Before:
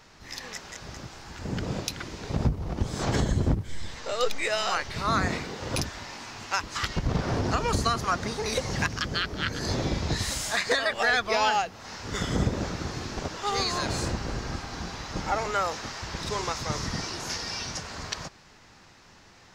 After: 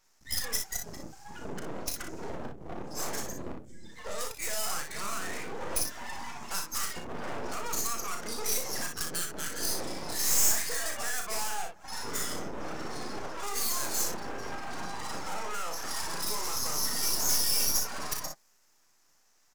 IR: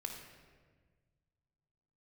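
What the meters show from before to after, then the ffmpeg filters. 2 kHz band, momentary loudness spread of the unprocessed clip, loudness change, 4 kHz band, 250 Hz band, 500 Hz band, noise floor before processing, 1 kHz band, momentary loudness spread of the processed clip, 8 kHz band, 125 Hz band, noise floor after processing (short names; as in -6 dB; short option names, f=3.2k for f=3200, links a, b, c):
-8.5 dB, 12 LU, -3.0 dB, -3.5 dB, -10.5 dB, -8.5 dB, -54 dBFS, -8.0 dB, 15 LU, +6.0 dB, -17.0 dB, -66 dBFS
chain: -filter_complex "[0:a]afftdn=nr=31:nf=-35,equalizer=f=86:w=1.4:g=-11.5,acompressor=threshold=-40dB:ratio=6,asplit=2[a][b];[b]highpass=f=720:p=1,volume=26dB,asoftclip=type=tanh:threshold=-22.5dB[c];[a][c]amix=inputs=2:normalize=0,lowpass=f=2.6k:p=1,volume=-6dB,aexciter=amount=12.7:drive=3.2:freq=5.5k,aeval=exprs='max(val(0),0)':c=same,aecho=1:1:35|47|60:0.447|0.168|0.447,adynamicequalizer=threshold=0.00794:dfrequency=7600:dqfactor=0.7:tfrequency=7600:tqfactor=0.7:attack=5:release=100:ratio=0.375:range=2.5:mode=boostabove:tftype=highshelf,volume=-2dB"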